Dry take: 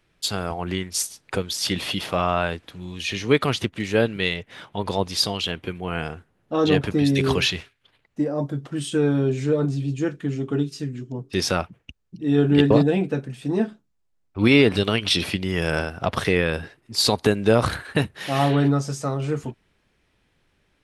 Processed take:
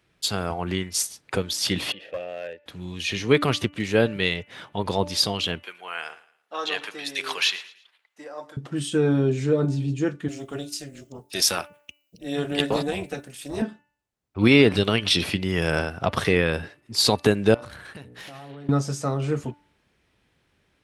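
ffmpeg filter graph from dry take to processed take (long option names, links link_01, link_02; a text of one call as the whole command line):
ffmpeg -i in.wav -filter_complex "[0:a]asettb=1/sr,asplit=3[link_01][link_02][link_03];[link_01]atrim=end=1.924[link_04];[link_02]atrim=start=1.92:end=2.66,asetpts=PTS-STARTPTS,afade=type=in:duration=0.004:curve=qsin,afade=type=out:start_time=0.736:duration=0.004:curve=qsin,asplit=3[link_05][link_06][link_07];[link_05]bandpass=frequency=530:width_type=q:width=8,volume=0dB[link_08];[link_06]bandpass=frequency=1840:width_type=q:width=8,volume=-6dB[link_09];[link_07]bandpass=frequency=2480:width_type=q:width=8,volume=-9dB[link_10];[link_08][link_09][link_10]amix=inputs=3:normalize=0,lowshelf=frequency=140:gain=6.5,aeval=exprs='clip(val(0),-1,0.0422)':channel_layout=same[link_11];[link_03]atrim=start=2.656[link_12];[link_04][link_11]acrossfade=duration=0.004:curve1=hsin:curve2=qsin[link_13];[link_13][link_12]acrossfade=duration=0.004:curve1=qsin:curve2=hsin,asettb=1/sr,asplit=3[link_14][link_15][link_16];[link_14]atrim=end=5.634[link_17];[link_15]atrim=start=5.63:end=8.57,asetpts=PTS-STARTPTS,afade=type=in:duration=0.004:curve=qsin,afade=type=out:start_time=2.936:duration=0.004:curve=qsin,highpass=1000,aecho=1:1:112|224|336:0.126|0.0428|0.0146,atrim=end_sample=129654[link_18];[link_16]atrim=start=8.566[link_19];[link_17][link_18]acrossfade=duration=0.004:curve1=hsin:curve2=qsin[link_20];[link_20][link_19]acrossfade=duration=0.004:curve1=qsin:curve2=hsin,asettb=1/sr,asplit=3[link_21][link_22][link_23];[link_21]atrim=end=10.284[link_24];[link_22]atrim=start=10.28:end=13.62,asetpts=PTS-STARTPTS,afade=type=in:duration=0.004:curve=qsin,afade=type=out:start_time=3.336:duration=0.004:curve=qsin,aemphasis=mode=production:type=riaa,tremolo=f=280:d=0.75[link_25];[link_23]atrim=start=13.616[link_26];[link_24][link_25]acrossfade=duration=0.004:curve1=hsin:curve2=qsin[link_27];[link_27][link_26]acrossfade=duration=0.004:curve1=qsin:curve2=hsin,asettb=1/sr,asplit=3[link_28][link_29][link_30];[link_28]atrim=end=17.544[link_31];[link_29]atrim=start=17.54:end=18.69,asetpts=PTS-STARTPTS,afade=type=in:duration=0.004:curve=qsin,afade=type=out:start_time=1.146:duration=0.004:curve=qsin,bandreject=frequency=60:width_type=h:width=6,bandreject=frequency=120:width_type=h:width=6,bandreject=frequency=180:width_type=h:width=6,bandreject=frequency=240:width_type=h:width=6,bandreject=frequency=300:width_type=h:width=6,bandreject=frequency=360:width_type=h:width=6,bandreject=frequency=420:width_type=h:width=6,bandreject=frequency=480:width_type=h:width=6,acompressor=threshold=-33dB:ratio=12:attack=3.2:release=140:knee=1:detection=peak,aeval=exprs='(tanh(35.5*val(0)+0.6)-tanh(0.6))/35.5':channel_layout=same[link_32];[link_30]atrim=start=18.686[link_33];[link_31][link_32]acrossfade=duration=0.004:curve1=hsin:curve2=qsin[link_34];[link_34][link_33]acrossfade=duration=0.004:curve1=qsin:curve2=hsin,highpass=46,bandreject=frequency=292.8:width_type=h:width=4,bandreject=frequency=585.6:width_type=h:width=4,bandreject=frequency=878.4:width_type=h:width=4,bandreject=frequency=1171.2:width_type=h:width=4,bandreject=frequency=1464:width_type=h:width=4,bandreject=frequency=1756.8:width_type=h:width=4,bandreject=frequency=2049.6:width_type=h:width=4,bandreject=frequency=2342.4:width_type=h:width=4,bandreject=frequency=2635.2:width_type=h:width=4,bandreject=frequency=2928:width_type=h:width=4" out.wav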